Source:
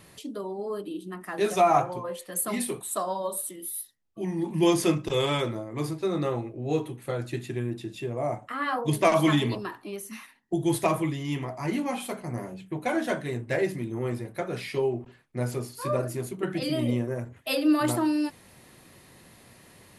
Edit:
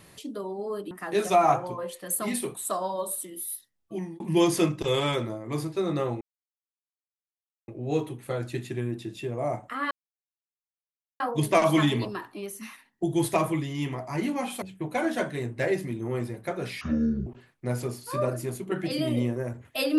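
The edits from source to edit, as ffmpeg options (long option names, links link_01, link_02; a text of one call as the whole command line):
ffmpeg -i in.wav -filter_complex "[0:a]asplit=8[link_01][link_02][link_03][link_04][link_05][link_06][link_07][link_08];[link_01]atrim=end=0.912[link_09];[link_02]atrim=start=1.168:end=4.46,asetpts=PTS-STARTPTS,afade=type=out:start_time=3.032:duration=0.26[link_10];[link_03]atrim=start=4.46:end=6.47,asetpts=PTS-STARTPTS,afade=type=in:duration=0.004:curve=hsin,afade=type=out:start_time=2.006:duration=0.004:curve=hsin,apad=pad_dur=1.47[link_11];[link_04]atrim=start=6.47:end=8.7,asetpts=PTS-STARTPTS,afade=type=in:duration=0.004:curve=hsin,afade=type=out:start_time=2.226:duration=0.004:curve=hsin,apad=pad_dur=1.29[link_12];[link_05]atrim=start=8.7:end=12.122,asetpts=PTS-STARTPTS,afade=type=in:duration=0.004:curve=hsin[link_13];[link_06]atrim=start=12.528:end=14.724[link_14];[link_07]atrim=start=14.72:end=14.98,asetpts=PTS-STARTPTS,asetrate=25137,aresample=44100[link_15];[link_08]atrim=start=14.976[link_16];[link_10][link_11][link_12][link_13]concat=n=4:v=0:a=1[link_17];[link_09][link_17]acrossfade=duration=0.004:curve1=hsin:curve2=hsin[link_18];[link_18][link_14]acrossfade=duration=0.004:curve1=hsin:curve2=hsin[link_19];[link_19][link_15]acrossfade=duration=0.004:curve1=hsin:curve2=hsin[link_20];[link_20][link_16]acrossfade=duration=0.004:curve1=hsin:curve2=hsin" out.wav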